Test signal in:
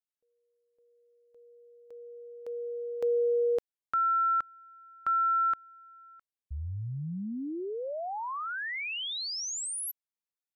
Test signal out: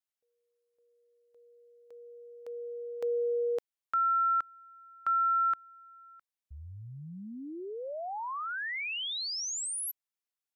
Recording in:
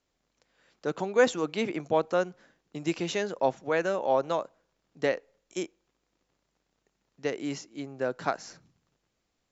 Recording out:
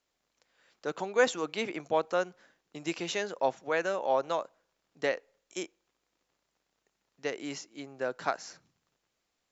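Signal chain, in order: bass shelf 350 Hz -10 dB

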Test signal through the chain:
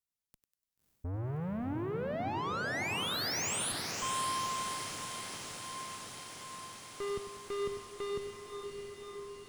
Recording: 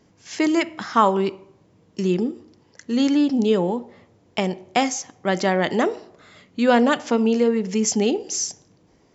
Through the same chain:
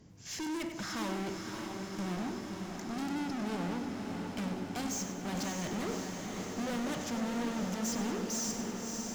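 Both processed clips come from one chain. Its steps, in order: tone controls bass +11 dB, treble +5 dB; valve stage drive 31 dB, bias 0.3; on a send: echo that smears into a reverb 589 ms, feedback 75%, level -5 dB; on the sum: bit-crushed delay 97 ms, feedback 55%, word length 10-bit, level -10.5 dB; trim -5 dB

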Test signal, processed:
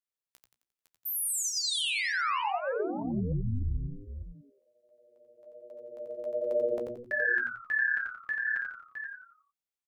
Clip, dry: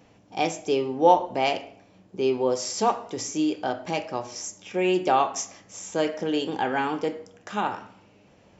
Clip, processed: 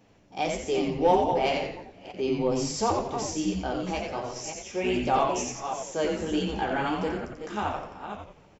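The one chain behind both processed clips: chunks repeated in reverse 302 ms, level -8 dB; flange 1.4 Hz, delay 8.6 ms, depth 7.4 ms, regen -26%; frequency-shifting echo 88 ms, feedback 39%, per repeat -120 Hz, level -4 dB; in parallel at -8 dB: hard clipper -17 dBFS; on the sum: trim -3.5 dB

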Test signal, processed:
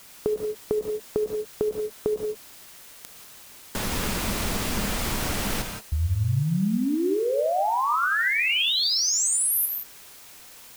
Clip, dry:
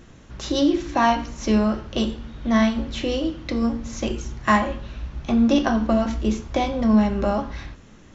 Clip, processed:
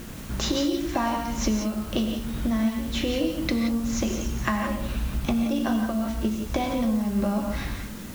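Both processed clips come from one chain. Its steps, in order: peaking EQ 210 Hz +8 dB 0.35 oct; in parallel at +1 dB: peak limiter -13 dBFS; on the sum: compression 10:1, threshold -23 dBFS; word length cut 8-bit, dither triangular; gated-style reverb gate 200 ms rising, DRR 4 dB; endings held to a fixed fall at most 350 dB/s

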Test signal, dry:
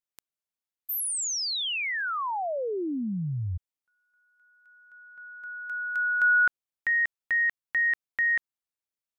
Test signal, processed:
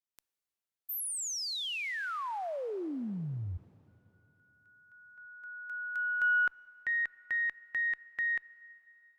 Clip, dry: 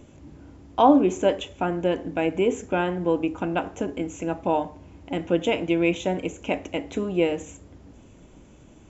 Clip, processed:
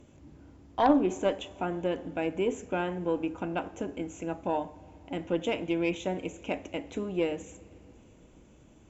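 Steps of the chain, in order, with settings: Chebyshev shaper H 4 -15 dB, 6 -23 dB, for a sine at -3.5 dBFS; plate-style reverb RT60 3.4 s, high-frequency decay 1×, DRR 20 dB; trim -6.5 dB

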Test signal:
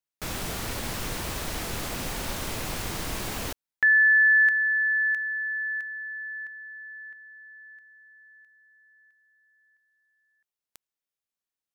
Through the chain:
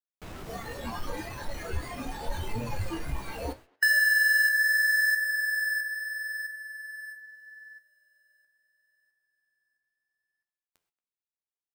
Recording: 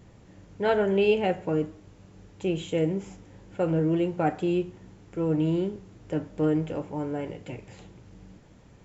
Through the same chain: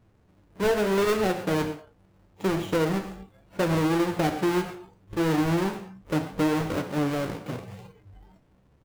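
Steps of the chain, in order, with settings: square wave that keeps the level; speakerphone echo 230 ms, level -22 dB; gated-style reverb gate 150 ms flat, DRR 9.5 dB; flange 0.76 Hz, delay 8.2 ms, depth 8 ms, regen +60%; spectral noise reduction 14 dB; treble shelf 2.9 kHz -7.5 dB; compression 6:1, threshold -25 dBFS; trim +4.5 dB

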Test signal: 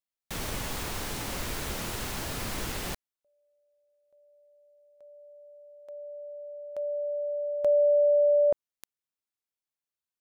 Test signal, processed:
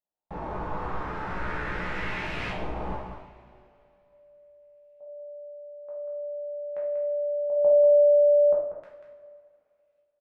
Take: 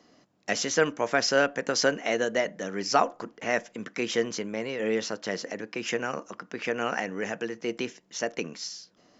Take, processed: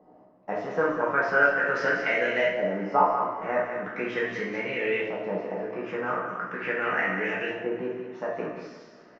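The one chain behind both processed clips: in parallel at +1 dB: compression, threshold -37 dBFS; on the sum: feedback comb 62 Hz, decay 0.2 s, harmonics all, mix 80%; delay 190 ms -8.5 dB; LFO low-pass saw up 0.4 Hz 740–2600 Hz; two-slope reverb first 0.59 s, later 2.6 s, from -16 dB, DRR -4.5 dB; trim -3.5 dB

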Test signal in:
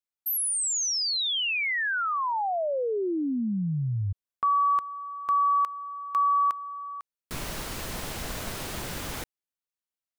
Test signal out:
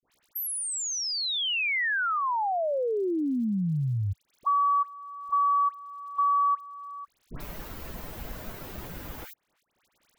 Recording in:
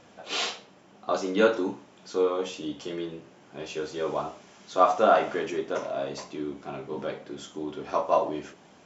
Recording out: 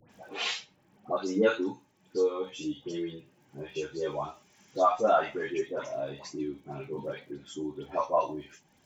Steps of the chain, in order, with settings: expander on every frequency bin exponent 1.5; crackle 67 per s -58 dBFS; phase dispersion highs, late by 97 ms, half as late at 1.4 kHz; three bands compressed up and down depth 40%; trim +1 dB

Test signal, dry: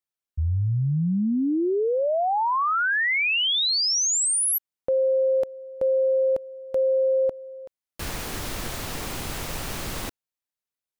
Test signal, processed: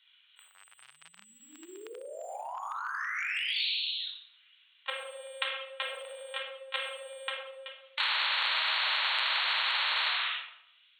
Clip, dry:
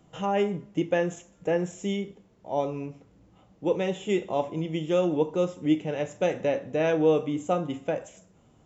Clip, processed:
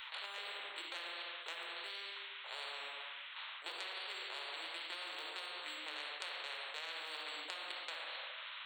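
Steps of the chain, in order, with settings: LPC vocoder at 8 kHz pitch kept; simulated room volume 2100 m³, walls furnished, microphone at 4.7 m; peak limiter -10 dBFS; high-pass 1.3 kHz 24 dB/octave; peaking EQ 3 kHz +11 dB 0.76 oct; compression 1.5:1, threshold -42 dBFS; tilt EQ +3.5 dB/octave; spectrum-flattening compressor 10:1; trim -4.5 dB

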